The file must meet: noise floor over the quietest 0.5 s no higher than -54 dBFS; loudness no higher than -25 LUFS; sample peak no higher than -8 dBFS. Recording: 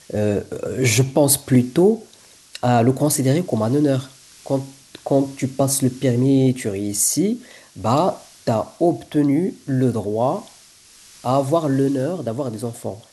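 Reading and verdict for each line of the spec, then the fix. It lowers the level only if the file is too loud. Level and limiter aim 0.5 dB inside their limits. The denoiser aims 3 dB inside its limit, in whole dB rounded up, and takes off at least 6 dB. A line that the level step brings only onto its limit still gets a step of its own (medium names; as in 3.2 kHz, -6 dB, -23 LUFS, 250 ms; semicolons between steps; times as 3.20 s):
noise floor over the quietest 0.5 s -48 dBFS: fail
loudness -20.0 LUFS: fail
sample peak -3.5 dBFS: fail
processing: noise reduction 6 dB, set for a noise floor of -48 dBFS; trim -5.5 dB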